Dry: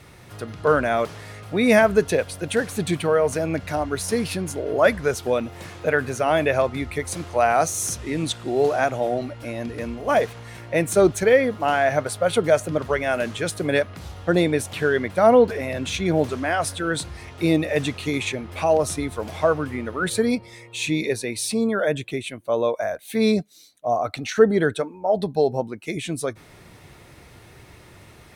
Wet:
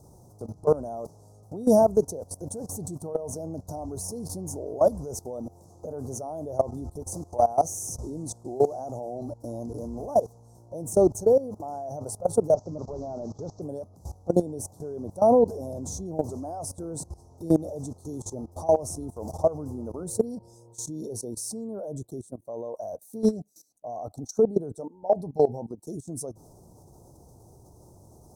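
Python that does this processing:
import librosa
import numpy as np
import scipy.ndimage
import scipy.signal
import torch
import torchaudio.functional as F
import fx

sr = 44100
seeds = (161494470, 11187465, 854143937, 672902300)

y = fx.delta_mod(x, sr, bps=32000, step_db=-37.5, at=(12.54, 13.62))
y = scipy.signal.sosfilt(scipy.signal.ellip(3, 1.0, 70, [860.0, 5900.0], 'bandstop', fs=sr, output='sos'), y)
y = fx.level_steps(y, sr, step_db=18)
y = y * 10.0 ** (1.5 / 20.0)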